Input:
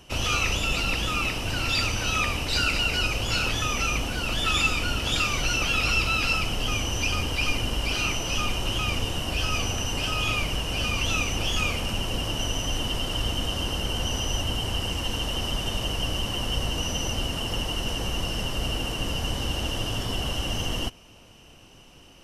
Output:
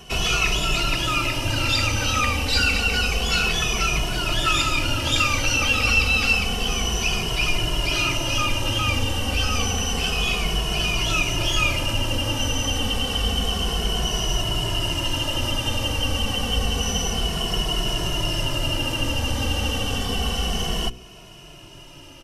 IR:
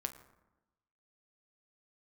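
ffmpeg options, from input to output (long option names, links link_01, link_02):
-filter_complex "[0:a]bandreject=frequency=61.93:width_type=h:width=4,bandreject=frequency=123.86:width_type=h:width=4,bandreject=frequency=185.79:width_type=h:width=4,bandreject=frequency=247.72:width_type=h:width=4,bandreject=frequency=309.65:width_type=h:width=4,bandreject=frequency=371.58:width_type=h:width=4,bandreject=frequency=433.51:width_type=h:width=4,bandreject=frequency=495.44:width_type=h:width=4,bandreject=frequency=557.37:width_type=h:width=4,asplit=2[link_01][link_02];[link_02]acompressor=threshold=-35dB:ratio=6,volume=-2dB[link_03];[link_01][link_03]amix=inputs=2:normalize=0,asplit=2[link_04][link_05];[link_05]adelay=2.3,afreqshift=-0.29[link_06];[link_04][link_06]amix=inputs=2:normalize=1,volume=5.5dB"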